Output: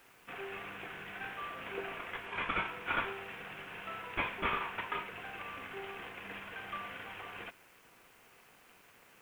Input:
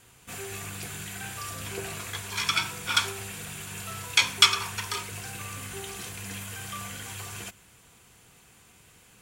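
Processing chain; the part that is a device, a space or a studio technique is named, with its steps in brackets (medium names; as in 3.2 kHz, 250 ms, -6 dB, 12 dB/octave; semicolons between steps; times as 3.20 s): army field radio (band-pass 320–3100 Hz; CVSD coder 16 kbps; white noise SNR 26 dB); 2.26–2.68 s: low-pass 10 kHz 12 dB/octave; trim -1.5 dB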